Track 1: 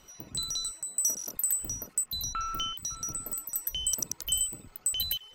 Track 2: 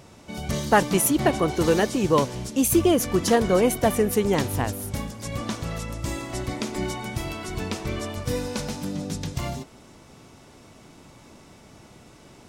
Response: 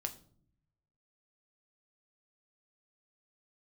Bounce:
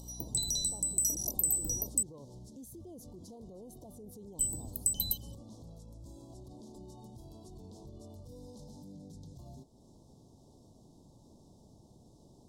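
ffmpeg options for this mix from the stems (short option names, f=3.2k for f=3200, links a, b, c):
-filter_complex "[0:a]equalizer=f=9.9k:w=1.4:g=9,acrossover=split=450[a][b];[b]acompressor=threshold=-33dB:ratio=2.5[c];[a][c]amix=inputs=2:normalize=0,aeval=exprs='val(0)+0.00355*(sin(2*PI*60*n/s)+sin(2*PI*2*60*n/s)/2+sin(2*PI*3*60*n/s)/3+sin(2*PI*4*60*n/s)/4+sin(2*PI*5*60*n/s)/5)':c=same,volume=2dB,asplit=3[d][e][f];[d]atrim=end=2.03,asetpts=PTS-STARTPTS,afade=t=out:st=2.026:d=0.004:c=hsin[g];[e]atrim=start=2.03:end=4.39,asetpts=PTS-STARTPTS,volume=0[h];[f]atrim=start=4.39,asetpts=PTS-STARTPTS,afade=t=in:d=0.004:c=hsin[i];[g][h][i]concat=n=3:v=0:a=1[j];[1:a]lowshelf=f=360:g=7.5,acompressor=threshold=-19dB:ratio=4,alimiter=limit=-23dB:level=0:latency=1:release=34,volume=-19dB[k];[j][k]amix=inputs=2:normalize=0,acompressor=mode=upward:threshold=-51dB:ratio=2.5,asuperstop=centerf=1900:order=8:qfactor=0.67"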